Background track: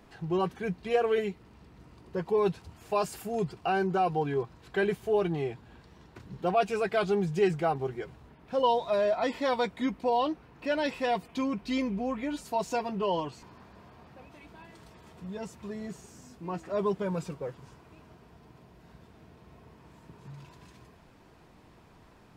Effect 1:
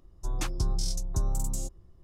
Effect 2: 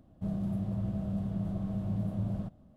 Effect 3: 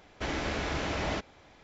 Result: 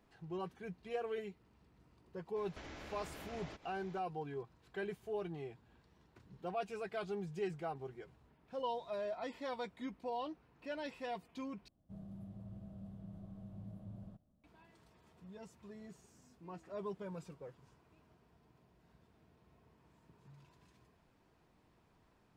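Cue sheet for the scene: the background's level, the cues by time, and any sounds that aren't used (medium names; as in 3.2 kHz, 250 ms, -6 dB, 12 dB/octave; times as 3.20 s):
background track -14 dB
2.36 s: add 3 -3.5 dB + compression 4:1, threshold -46 dBFS
11.68 s: replace with 2 -17 dB
not used: 1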